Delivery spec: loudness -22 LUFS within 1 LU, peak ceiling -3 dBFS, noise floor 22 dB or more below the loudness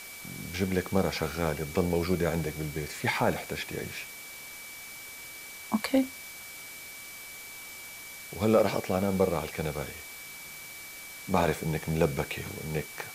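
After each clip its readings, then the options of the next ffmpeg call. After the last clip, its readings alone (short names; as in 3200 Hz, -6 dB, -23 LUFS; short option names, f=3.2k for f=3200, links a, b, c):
steady tone 2300 Hz; tone level -45 dBFS; noise floor -44 dBFS; noise floor target -54 dBFS; loudness -31.5 LUFS; peak -11.5 dBFS; loudness target -22.0 LUFS
-> -af "bandreject=f=2.3k:w=30"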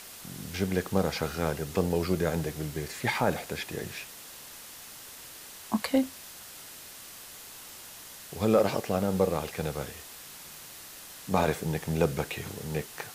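steady tone none; noise floor -46 dBFS; noise floor target -52 dBFS
-> -af "afftdn=nr=6:nf=-46"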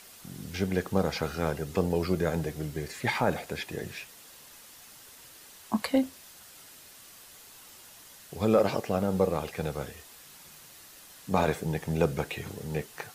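noise floor -52 dBFS; loudness -30.0 LUFS; peak -12.0 dBFS; loudness target -22.0 LUFS
-> -af "volume=8dB"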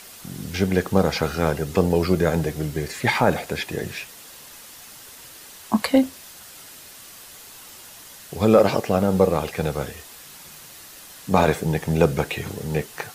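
loudness -22.0 LUFS; peak -4.0 dBFS; noise floor -44 dBFS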